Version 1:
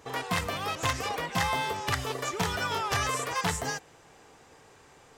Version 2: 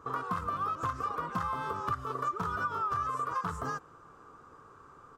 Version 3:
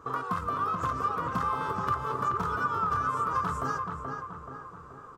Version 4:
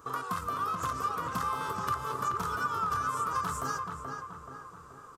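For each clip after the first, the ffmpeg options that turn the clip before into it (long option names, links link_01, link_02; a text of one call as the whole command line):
ffmpeg -i in.wav -af "firequalizer=gain_entry='entry(350,0);entry(790,-8);entry(1200,13);entry(1900,-14)':delay=0.05:min_phase=1,acompressor=threshold=-30dB:ratio=6" out.wav
ffmpeg -i in.wav -filter_complex "[0:a]asplit=2[link_01][link_02];[link_02]adelay=429,lowpass=frequency=2200:poles=1,volume=-4dB,asplit=2[link_03][link_04];[link_04]adelay=429,lowpass=frequency=2200:poles=1,volume=0.53,asplit=2[link_05][link_06];[link_06]adelay=429,lowpass=frequency=2200:poles=1,volume=0.53,asplit=2[link_07][link_08];[link_08]adelay=429,lowpass=frequency=2200:poles=1,volume=0.53,asplit=2[link_09][link_10];[link_10]adelay=429,lowpass=frequency=2200:poles=1,volume=0.53,asplit=2[link_11][link_12];[link_12]adelay=429,lowpass=frequency=2200:poles=1,volume=0.53,asplit=2[link_13][link_14];[link_14]adelay=429,lowpass=frequency=2200:poles=1,volume=0.53[link_15];[link_01][link_03][link_05][link_07][link_09][link_11][link_13][link_15]amix=inputs=8:normalize=0,volume=2.5dB" out.wav
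ffmpeg -i in.wav -af "aresample=32000,aresample=44100,crystalizer=i=4:c=0,volume=-4.5dB" out.wav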